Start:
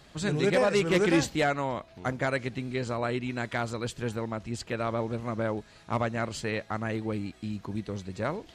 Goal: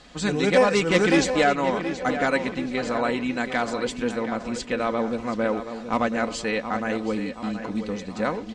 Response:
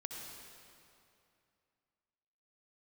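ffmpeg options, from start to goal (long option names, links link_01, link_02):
-filter_complex "[0:a]lowpass=frequency=8700:width=0.5412,lowpass=frequency=8700:width=1.3066,equalizer=frequency=100:width_type=o:width=0.65:gain=-12,aecho=1:1:4:0.49,asplit=2[link_01][link_02];[link_02]adelay=726,lowpass=frequency=3400:poles=1,volume=-9.5dB,asplit=2[link_03][link_04];[link_04]adelay=726,lowpass=frequency=3400:poles=1,volume=0.52,asplit=2[link_05][link_06];[link_06]adelay=726,lowpass=frequency=3400:poles=1,volume=0.52,asplit=2[link_07][link_08];[link_08]adelay=726,lowpass=frequency=3400:poles=1,volume=0.52,asplit=2[link_09][link_10];[link_10]adelay=726,lowpass=frequency=3400:poles=1,volume=0.52,asplit=2[link_11][link_12];[link_12]adelay=726,lowpass=frequency=3400:poles=1,volume=0.52[link_13];[link_03][link_05][link_07][link_09][link_11][link_13]amix=inputs=6:normalize=0[link_14];[link_01][link_14]amix=inputs=2:normalize=0,volume=5dB"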